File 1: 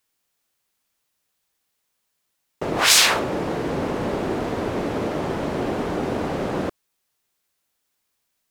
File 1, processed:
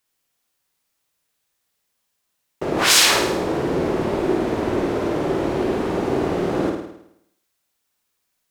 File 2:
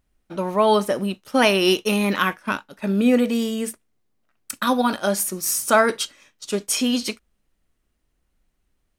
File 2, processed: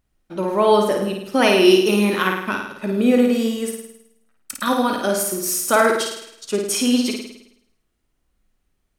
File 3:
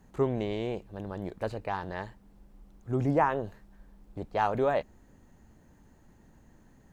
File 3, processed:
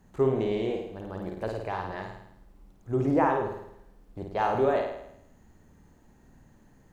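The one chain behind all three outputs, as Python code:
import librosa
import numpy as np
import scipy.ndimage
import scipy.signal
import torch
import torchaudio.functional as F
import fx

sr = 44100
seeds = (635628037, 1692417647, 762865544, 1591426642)

y = fx.dynamic_eq(x, sr, hz=360.0, q=3.0, threshold_db=-39.0, ratio=4.0, max_db=6)
y = fx.room_flutter(y, sr, wall_m=9.1, rt60_s=0.76)
y = F.gain(torch.from_numpy(y), -1.0).numpy()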